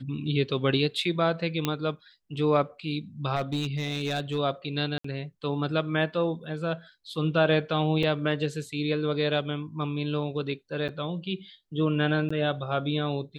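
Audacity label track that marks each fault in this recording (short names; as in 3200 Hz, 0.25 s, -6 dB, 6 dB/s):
1.650000	1.650000	pop -11 dBFS
3.350000	4.390000	clipped -22.5 dBFS
4.980000	5.040000	gap 64 ms
8.030000	8.030000	gap 3.6 ms
10.880000	10.890000	gap 7.7 ms
12.290000	12.300000	gap 15 ms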